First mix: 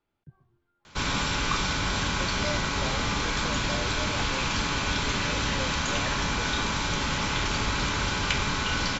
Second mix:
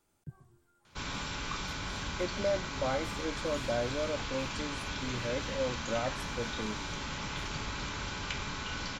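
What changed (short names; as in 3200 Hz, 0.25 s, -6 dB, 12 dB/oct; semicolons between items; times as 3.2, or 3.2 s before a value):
speech: remove ladder low-pass 4500 Hz, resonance 20%; background -10.5 dB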